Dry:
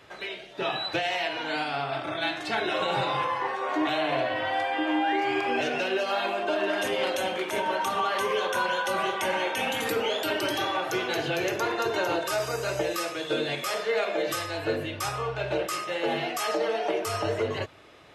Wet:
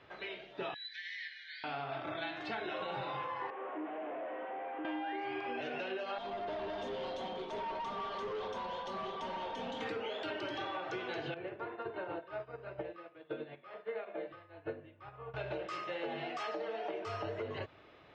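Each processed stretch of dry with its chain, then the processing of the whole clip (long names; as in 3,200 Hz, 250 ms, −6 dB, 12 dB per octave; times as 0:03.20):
0:00.74–0:01.64: Butterworth high-pass 1,700 Hz 96 dB per octave + phaser with its sweep stopped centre 2,700 Hz, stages 6
0:03.50–0:04.85: linear delta modulator 16 kbit/s, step −44 dBFS + high-pass filter 330 Hz 24 dB per octave
0:06.18–0:09.81: flat-topped bell 1,900 Hz −12.5 dB 1.2 octaves + comb filter 4.4 ms, depth 62% + tube saturation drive 28 dB, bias 0.35
0:11.34–0:15.34: high-frequency loss of the air 420 metres + expander for the loud parts 2.5 to 1, over −38 dBFS
whole clip: Bessel low-pass filter 3,200 Hz, order 4; downward compressor, threshold −30 dBFS; level −6 dB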